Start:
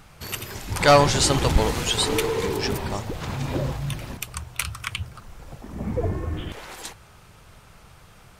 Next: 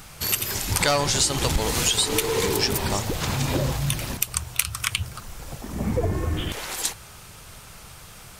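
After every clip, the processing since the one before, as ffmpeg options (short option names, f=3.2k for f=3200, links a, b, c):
-af "highshelf=f=3.7k:g=11.5,acompressor=threshold=-22dB:ratio=8,volume=3.5dB"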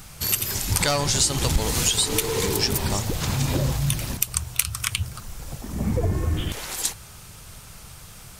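-af "bass=f=250:g=5,treble=f=4k:g=4,volume=-2.5dB"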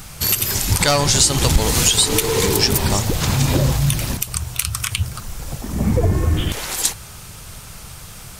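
-af "alimiter=level_in=7.5dB:limit=-1dB:release=50:level=0:latency=1,volume=-1dB"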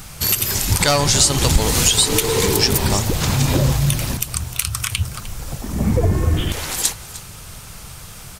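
-af "aecho=1:1:304:0.15"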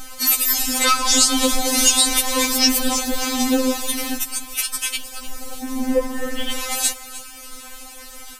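-af "afftfilt=real='re*3.46*eq(mod(b,12),0)':imag='im*3.46*eq(mod(b,12),0)':win_size=2048:overlap=0.75,volume=2.5dB"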